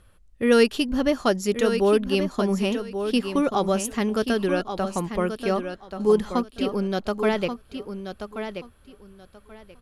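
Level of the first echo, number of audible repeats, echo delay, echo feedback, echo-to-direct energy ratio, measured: -8.5 dB, 2, 1.132 s, 19%, -8.5 dB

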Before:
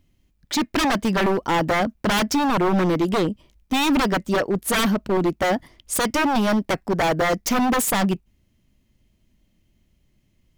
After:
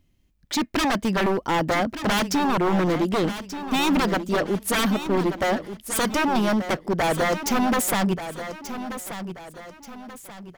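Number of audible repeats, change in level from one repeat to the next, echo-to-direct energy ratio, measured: 3, -8.0 dB, -10.5 dB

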